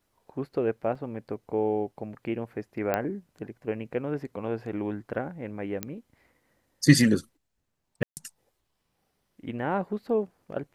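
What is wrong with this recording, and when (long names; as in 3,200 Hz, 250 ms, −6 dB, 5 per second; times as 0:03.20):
0:00.95: drop-out 4.1 ms
0:02.94: click −13 dBFS
0:05.83: click −13 dBFS
0:08.03–0:08.17: drop-out 139 ms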